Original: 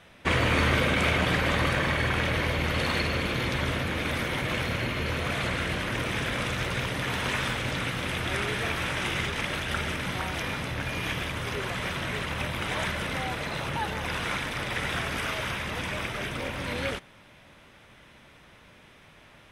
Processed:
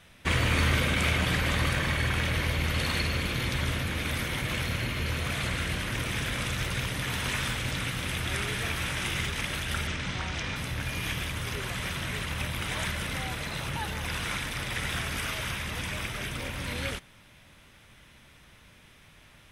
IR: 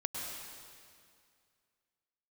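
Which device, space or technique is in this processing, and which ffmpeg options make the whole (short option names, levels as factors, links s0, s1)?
smiley-face EQ: -filter_complex "[0:a]lowshelf=f=100:g=6.5,equalizer=f=560:t=o:w=2.3:g=-4.5,highshelf=f=5800:g=8.5,asettb=1/sr,asplit=3[s0][s1][s2];[s0]atrim=end=9.874[s3];[s1]atrim=start=9.87:end=10.56,asetpts=PTS-STARTPTS,afade=t=in:d=0.004:c=qsin,afade=t=out:st=0.686:d=0.004:c=qsin,lowpass=f=7200:w=0.5412,lowpass=f=7200:w=1.3066[s4];[s2]atrim=start=10.556[s5];[s3][s4]acrossfade=d=0.004:c1=hsin:c2=qsin[s6];[s6][s5]acrossfade=d=0.004:c1=qsin:c2=hsin,volume=0.794"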